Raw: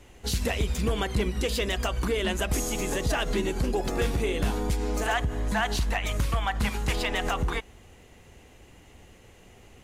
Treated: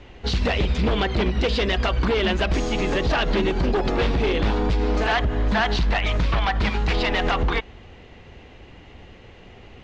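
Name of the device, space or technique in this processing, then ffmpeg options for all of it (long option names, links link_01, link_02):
synthesiser wavefolder: -af "aeval=exprs='0.075*(abs(mod(val(0)/0.075+3,4)-2)-1)':channel_layout=same,lowpass=frequency=4500:width=0.5412,lowpass=frequency=4500:width=1.3066,volume=7.5dB"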